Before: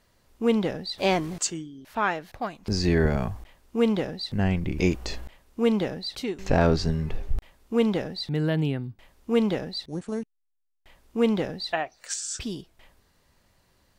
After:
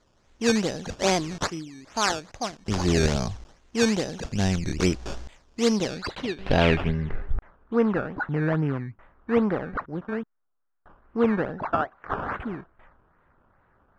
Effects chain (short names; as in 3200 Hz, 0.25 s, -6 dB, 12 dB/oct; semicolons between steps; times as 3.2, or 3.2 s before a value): decimation with a swept rate 15×, swing 100% 2.4 Hz; low-pass sweep 6100 Hz -> 1400 Hz, 5.75–7.42